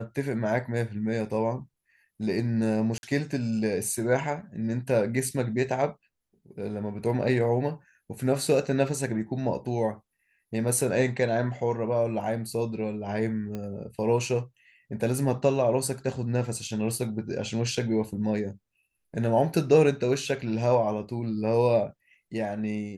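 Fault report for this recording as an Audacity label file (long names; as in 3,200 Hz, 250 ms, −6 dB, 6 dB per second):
2.980000	3.030000	drop-out 51 ms
13.550000	13.550000	click −22 dBFS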